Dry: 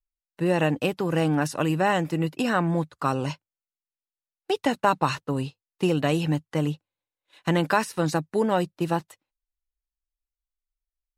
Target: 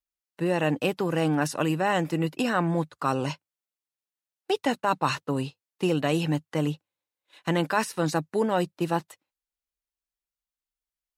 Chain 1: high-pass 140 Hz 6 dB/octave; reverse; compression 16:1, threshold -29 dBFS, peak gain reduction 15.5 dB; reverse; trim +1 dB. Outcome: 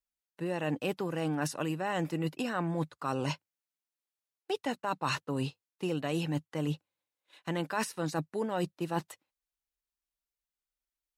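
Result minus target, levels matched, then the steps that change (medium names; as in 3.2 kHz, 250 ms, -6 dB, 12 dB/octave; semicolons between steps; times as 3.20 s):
compression: peak gain reduction +9 dB
change: compression 16:1, threshold -19.5 dBFS, peak gain reduction 6.5 dB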